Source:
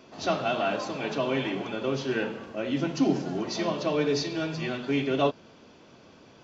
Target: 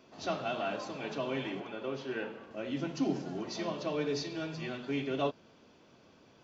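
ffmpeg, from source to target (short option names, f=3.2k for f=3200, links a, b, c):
-filter_complex "[0:a]asettb=1/sr,asplit=3[a][b][c];[a]atrim=end=1.604[d];[b]atrim=start=1.6:end=2.51,asetpts=PTS-STARTPTS,afade=t=in:d=0.004:c=qsin,afade=t=out:st=0.906:d=0.004:c=qsin,bass=f=250:g=-6,treble=f=4k:g=-8[e];[c]atrim=start=2.506[f];[d][e]acrossfade=d=0.004:c1=hsin:c2=qsin[g];[g][f]acrossfade=d=0.004:c1=qsin:c2=hsin,volume=-7.5dB"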